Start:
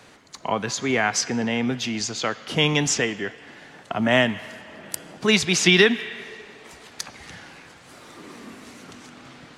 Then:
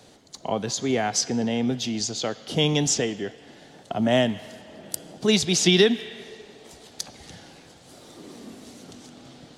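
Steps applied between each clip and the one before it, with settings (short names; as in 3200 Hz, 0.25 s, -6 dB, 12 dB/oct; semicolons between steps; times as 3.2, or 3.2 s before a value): band shelf 1600 Hz -9.5 dB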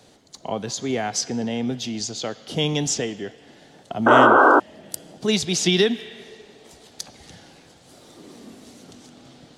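painted sound noise, 4.06–4.6, 250–1600 Hz -12 dBFS; gain -1 dB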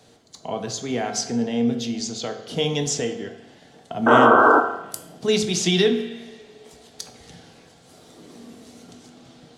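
reverb RT60 0.80 s, pre-delay 3 ms, DRR 4.5 dB; gain -2 dB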